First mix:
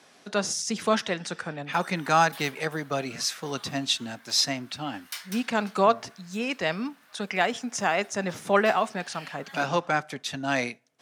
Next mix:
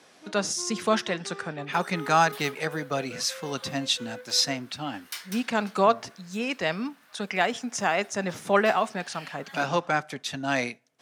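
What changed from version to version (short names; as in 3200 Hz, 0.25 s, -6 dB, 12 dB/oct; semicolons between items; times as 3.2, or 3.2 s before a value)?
first sound: unmuted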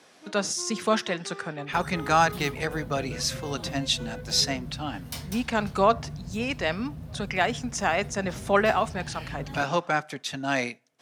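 second sound: remove resonant high-pass 1500 Hz, resonance Q 2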